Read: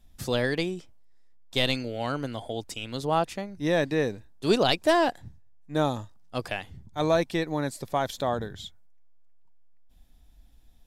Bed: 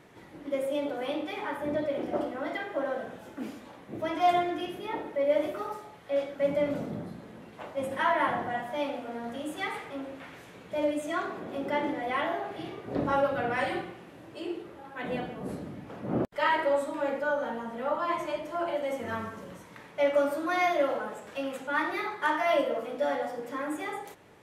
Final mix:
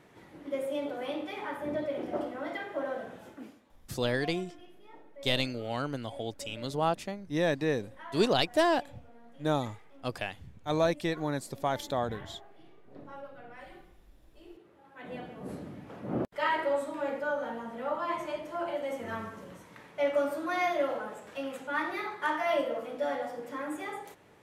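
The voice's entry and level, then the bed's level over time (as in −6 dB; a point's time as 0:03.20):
3.70 s, −3.5 dB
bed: 0:03.28 −3 dB
0:03.70 −19.5 dB
0:14.27 −19.5 dB
0:15.56 −3 dB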